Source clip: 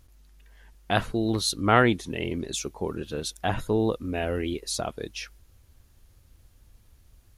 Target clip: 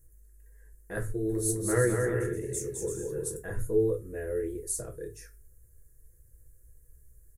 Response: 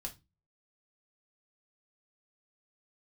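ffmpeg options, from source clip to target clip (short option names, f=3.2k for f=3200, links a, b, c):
-filter_complex "[0:a]firequalizer=gain_entry='entry(140,0);entry(220,-15);entry(410,12);entry(740,-18);entry(1700,0);entry(3000,-27);entry(7800,11)':delay=0.05:min_phase=1,asettb=1/sr,asplit=3[a][b][c];[a]atrim=end=1.084[d];[b]atrim=start=1.08:end=3.36,asetpts=PTS-STARTPTS,afade=t=in:d=0.004:c=qsin,afade=t=out:st=2.276:d=0.004:c=qsin,aecho=1:1:210|336|411.6|457|484.2:0.631|0.398|0.251|0.158|0.1,atrim=end_sample=100548[e];[c]atrim=start=3.356[f];[d][e]acrossfade=d=0.004:c1=hsin:c2=qsin[g];[g][f]acrossfade=d=0.004:c1=qsin:c2=hsin[h];[1:a]atrim=start_sample=2205[i];[h][i]afir=irnorm=-1:irlink=0,volume=-5dB"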